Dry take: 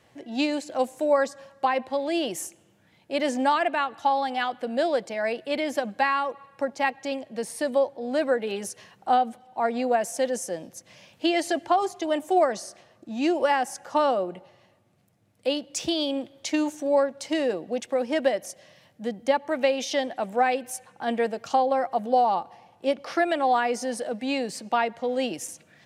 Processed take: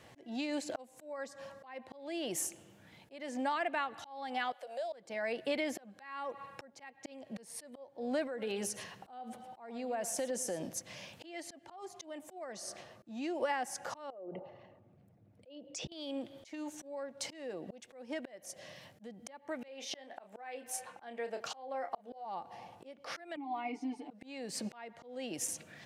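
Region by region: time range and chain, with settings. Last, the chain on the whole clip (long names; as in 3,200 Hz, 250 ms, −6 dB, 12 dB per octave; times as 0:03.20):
0:04.52–0:04.93: four-pole ladder high-pass 540 Hz, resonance 65% + high-shelf EQ 3,000 Hz +11.5 dB + downward compressor 2.5 to 1, threshold −46 dBFS
0:08.27–0:10.74: downward compressor 3 to 1, threshold −37 dBFS + single-tap delay 110 ms −15.5 dB
0:14.10–0:15.92: spectral envelope exaggerated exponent 1.5 + low-pass filter 2,100 Hz 6 dB per octave + downward compressor 3 to 1, threshold −39 dBFS
0:19.68–0:22.26: bass and treble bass −12 dB, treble −4 dB + double-tracking delay 30 ms −9.5 dB
0:23.36–0:24.11: formant filter u + comb filter 6.9 ms, depth 84%
whole clip: dynamic equaliser 2,000 Hz, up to +4 dB, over −43 dBFS, Q 3.3; downward compressor 6 to 1, threshold −34 dBFS; volume swells 418 ms; level +2.5 dB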